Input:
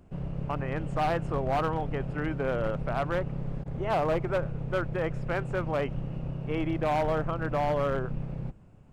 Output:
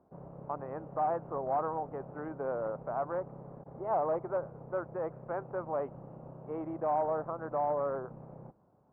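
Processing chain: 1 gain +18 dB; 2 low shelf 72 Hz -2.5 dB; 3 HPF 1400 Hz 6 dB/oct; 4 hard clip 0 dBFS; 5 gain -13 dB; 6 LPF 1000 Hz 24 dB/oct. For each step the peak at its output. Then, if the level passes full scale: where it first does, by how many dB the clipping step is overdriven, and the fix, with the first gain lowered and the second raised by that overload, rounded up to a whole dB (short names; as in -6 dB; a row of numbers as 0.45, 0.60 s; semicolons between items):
-3.0, -3.0, -2.5, -2.5, -15.5, -22.0 dBFS; no overload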